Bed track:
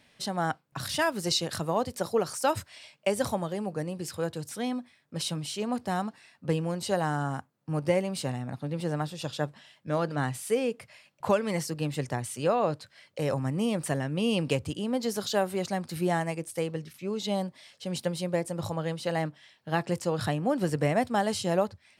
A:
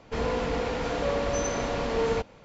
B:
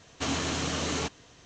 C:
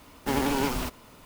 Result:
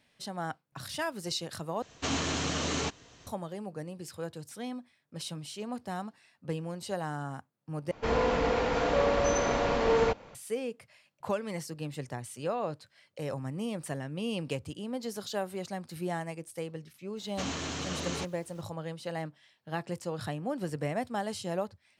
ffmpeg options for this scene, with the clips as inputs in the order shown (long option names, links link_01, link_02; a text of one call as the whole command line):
ffmpeg -i bed.wav -i cue0.wav -i cue1.wav -filter_complex "[2:a]asplit=2[link_01][link_02];[0:a]volume=-7dB[link_03];[1:a]equalizer=frequency=980:width=0.36:gain=4.5[link_04];[link_02]aeval=exprs='val(0)*gte(abs(val(0)),0.002)':channel_layout=same[link_05];[link_03]asplit=3[link_06][link_07][link_08];[link_06]atrim=end=1.824[link_09];[link_01]atrim=end=1.45,asetpts=PTS-STARTPTS,volume=-1dB[link_10];[link_07]atrim=start=3.266:end=7.914[link_11];[link_04]atrim=end=2.44,asetpts=PTS-STARTPTS,volume=-2dB[link_12];[link_08]atrim=start=10.346[link_13];[link_05]atrim=end=1.45,asetpts=PTS-STARTPTS,volume=-5.5dB,afade=type=in:duration=0.004:curve=hsin,afade=type=out:start_time=1.446:duration=0.004:curve=hsin,adelay=17170[link_14];[link_09][link_10]acrossfade=duration=0.004:curve1=hsin:curve2=hsin[link_15];[link_15][link_11]acrossfade=duration=0.004:curve1=hsin:curve2=hsin[link_16];[link_16][link_12]acrossfade=duration=0.004:curve1=hsin:curve2=hsin[link_17];[link_17][link_13]acrossfade=duration=0.004:curve1=hsin:curve2=hsin[link_18];[link_18][link_14]amix=inputs=2:normalize=0" out.wav